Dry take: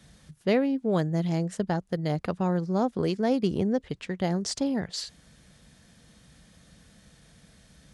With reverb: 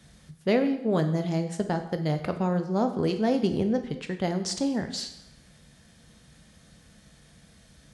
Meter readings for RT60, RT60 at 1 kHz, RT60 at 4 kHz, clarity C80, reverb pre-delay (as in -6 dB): 0.85 s, 0.85 s, 0.75 s, 12.5 dB, 10 ms